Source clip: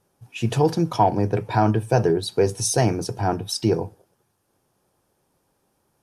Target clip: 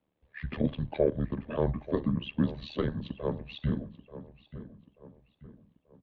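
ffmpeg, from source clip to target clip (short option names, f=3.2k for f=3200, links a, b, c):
-filter_complex "[0:a]asetrate=32097,aresample=44100,atempo=1.37395,tremolo=f=75:d=0.857,asplit=2[a][b];[b]adelay=885,lowpass=f=2.3k:p=1,volume=-14dB,asplit=2[c][d];[d]adelay=885,lowpass=f=2.3k:p=1,volume=0.44,asplit=2[e][f];[f]adelay=885,lowpass=f=2.3k:p=1,volume=0.44,asplit=2[g][h];[h]adelay=885,lowpass=f=2.3k:p=1,volume=0.44[i];[c][e][g][i]amix=inputs=4:normalize=0[j];[a][j]amix=inputs=2:normalize=0,highpass=f=160:t=q:w=0.5412,highpass=f=160:t=q:w=1.307,lowpass=f=3.4k:t=q:w=0.5176,lowpass=f=3.4k:t=q:w=0.7071,lowpass=f=3.4k:t=q:w=1.932,afreqshift=-96,volume=-5dB"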